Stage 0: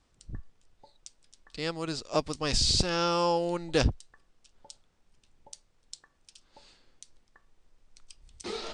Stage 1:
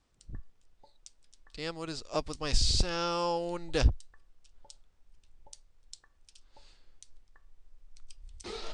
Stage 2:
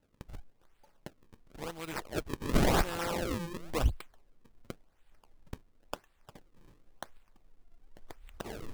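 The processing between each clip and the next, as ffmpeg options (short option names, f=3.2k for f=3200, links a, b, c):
-af "asubboost=boost=4:cutoff=84,volume=-4dB"
-af "aexciter=amount=6.2:drive=7:freq=6.1k,acrusher=samples=36:mix=1:aa=0.000001:lfo=1:lforange=57.6:lforate=0.94,volume=-4dB"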